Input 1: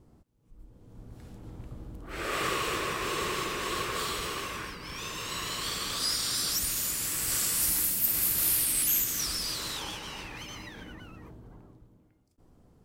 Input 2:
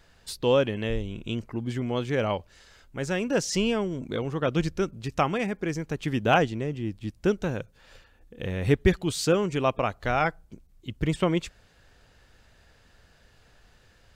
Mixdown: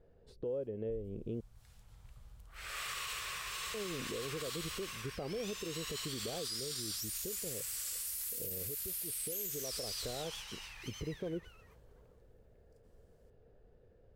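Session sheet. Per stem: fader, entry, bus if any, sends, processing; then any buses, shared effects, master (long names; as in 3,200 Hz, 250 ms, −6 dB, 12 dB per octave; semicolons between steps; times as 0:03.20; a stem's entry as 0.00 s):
−3.5 dB, 0.45 s, no send, guitar amp tone stack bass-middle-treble 10-0-10
−5.0 dB, 0.00 s, muted 0:01.41–0:03.74, no send, drawn EQ curve 300 Hz 0 dB, 450 Hz +10 dB, 980 Hz −12 dB, 11,000 Hz −30 dB; downward compressor 6 to 1, threshold −30 dBFS, peak gain reduction 18.5 dB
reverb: not used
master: brickwall limiter −31 dBFS, peak gain reduction 15 dB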